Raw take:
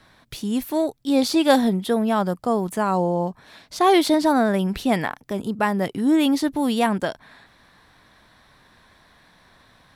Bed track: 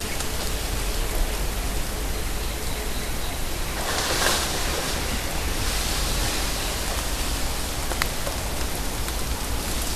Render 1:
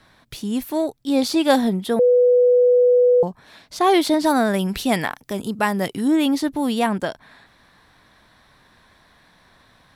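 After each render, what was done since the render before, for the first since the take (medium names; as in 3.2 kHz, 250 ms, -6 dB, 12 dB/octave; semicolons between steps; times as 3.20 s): 1.99–3.23 s: bleep 493 Hz -11 dBFS; 4.24–6.08 s: treble shelf 2.7 kHz +8 dB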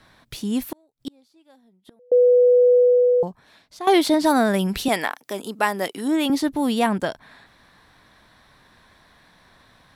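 0.69–2.12 s: inverted gate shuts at -18 dBFS, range -38 dB; 2.75–3.87 s: fade out, to -14 dB; 4.88–6.30 s: high-pass 330 Hz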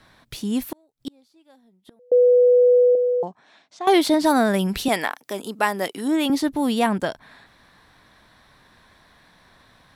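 2.95–3.87 s: cabinet simulation 240–7400 Hz, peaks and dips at 480 Hz -4 dB, 740 Hz +4 dB, 4.6 kHz -5 dB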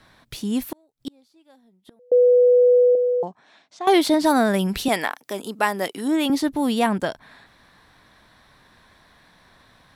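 no audible change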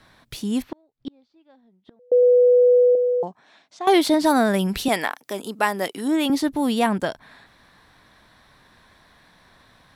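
0.62–2.23 s: distance through air 210 m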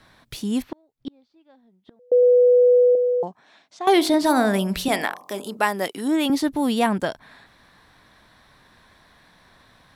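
3.94–5.57 s: de-hum 45.49 Hz, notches 27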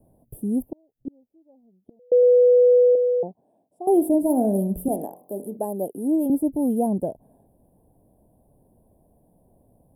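inverse Chebyshev band-stop 1.2–6.6 kHz, stop band 40 dB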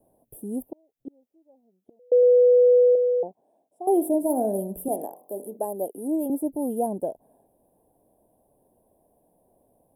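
tone controls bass -14 dB, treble +1 dB; band-stop 4.5 kHz, Q 5.5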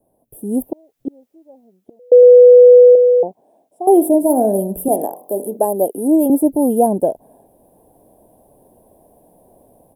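level rider gain up to 14 dB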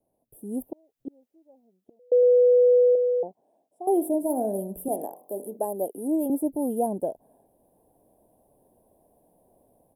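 trim -12 dB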